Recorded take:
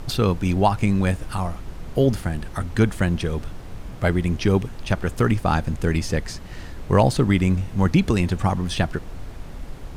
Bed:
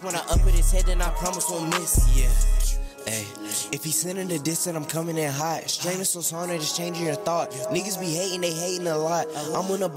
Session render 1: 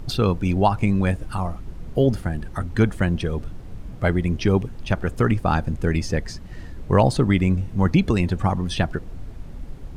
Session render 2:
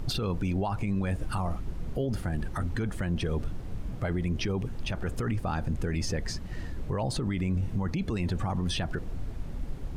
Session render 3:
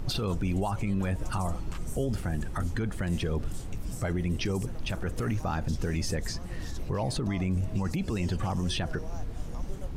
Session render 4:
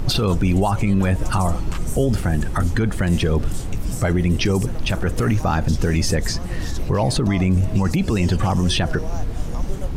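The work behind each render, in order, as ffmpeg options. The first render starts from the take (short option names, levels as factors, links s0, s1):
-af "afftdn=nr=8:nf=-37"
-af "acompressor=threshold=0.112:ratio=6,alimiter=limit=0.0794:level=0:latency=1:release=19"
-filter_complex "[1:a]volume=0.0794[s0];[0:a][s0]amix=inputs=2:normalize=0"
-af "volume=3.55"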